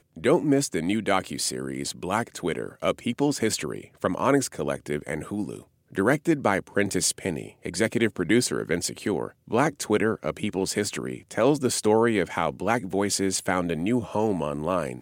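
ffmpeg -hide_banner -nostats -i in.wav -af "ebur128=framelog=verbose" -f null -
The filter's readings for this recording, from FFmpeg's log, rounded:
Integrated loudness:
  I:         -25.8 LUFS
  Threshold: -35.8 LUFS
Loudness range:
  LRA:         2.6 LU
  Threshold: -45.9 LUFS
  LRA low:   -27.3 LUFS
  LRA high:  -24.6 LUFS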